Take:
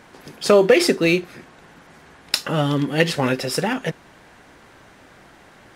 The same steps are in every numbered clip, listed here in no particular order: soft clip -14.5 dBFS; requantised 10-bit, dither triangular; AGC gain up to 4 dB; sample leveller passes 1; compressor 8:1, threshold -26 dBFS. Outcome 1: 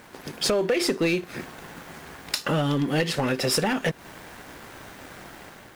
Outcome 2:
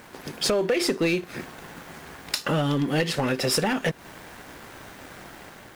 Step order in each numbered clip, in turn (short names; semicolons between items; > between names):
requantised > compressor > AGC > sample leveller > soft clip; requantised > compressor > sample leveller > AGC > soft clip